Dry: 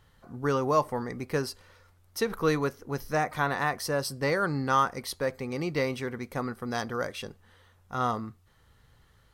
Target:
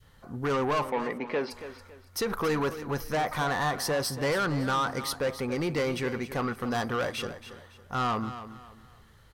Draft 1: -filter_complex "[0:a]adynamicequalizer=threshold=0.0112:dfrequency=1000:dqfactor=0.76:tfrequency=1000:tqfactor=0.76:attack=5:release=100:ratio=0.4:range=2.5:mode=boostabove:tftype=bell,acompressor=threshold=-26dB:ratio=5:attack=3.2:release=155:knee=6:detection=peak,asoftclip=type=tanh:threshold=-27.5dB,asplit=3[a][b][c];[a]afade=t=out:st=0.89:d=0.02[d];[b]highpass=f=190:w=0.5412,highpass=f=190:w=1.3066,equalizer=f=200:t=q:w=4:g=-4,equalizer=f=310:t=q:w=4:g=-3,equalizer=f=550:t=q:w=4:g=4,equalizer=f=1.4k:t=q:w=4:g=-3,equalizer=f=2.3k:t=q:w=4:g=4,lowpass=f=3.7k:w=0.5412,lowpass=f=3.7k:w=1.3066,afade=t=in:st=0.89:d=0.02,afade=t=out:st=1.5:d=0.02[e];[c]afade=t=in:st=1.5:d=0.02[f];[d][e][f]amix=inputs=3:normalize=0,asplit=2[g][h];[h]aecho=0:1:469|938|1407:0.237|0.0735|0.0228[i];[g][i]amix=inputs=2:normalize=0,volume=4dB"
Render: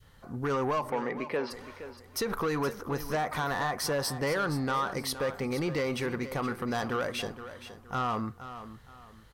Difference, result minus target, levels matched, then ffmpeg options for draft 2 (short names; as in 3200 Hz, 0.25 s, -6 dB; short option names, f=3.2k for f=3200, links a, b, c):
echo 0.19 s late; compressor: peak gain reduction +6 dB
-filter_complex "[0:a]adynamicequalizer=threshold=0.0112:dfrequency=1000:dqfactor=0.76:tfrequency=1000:tqfactor=0.76:attack=5:release=100:ratio=0.4:range=2.5:mode=boostabove:tftype=bell,acompressor=threshold=-18.5dB:ratio=5:attack=3.2:release=155:knee=6:detection=peak,asoftclip=type=tanh:threshold=-27.5dB,asplit=3[a][b][c];[a]afade=t=out:st=0.89:d=0.02[d];[b]highpass=f=190:w=0.5412,highpass=f=190:w=1.3066,equalizer=f=200:t=q:w=4:g=-4,equalizer=f=310:t=q:w=4:g=-3,equalizer=f=550:t=q:w=4:g=4,equalizer=f=1.4k:t=q:w=4:g=-3,equalizer=f=2.3k:t=q:w=4:g=4,lowpass=f=3.7k:w=0.5412,lowpass=f=3.7k:w=1.3066,afade=t=in:st=0.89:d=0.02,afade=t=out:st=1.5:d=0.02[e];[c]afade=t=in:st=1.5:d=0.02[f];[d][e][f]amix=inputs=3:normalize=0,asplit=2[g][h];[h]aecho=0:1:279|558|837:0.237|0.0735|0.0228[i];[g][i]amix=inputs=2:normalize=0,volume=4dB"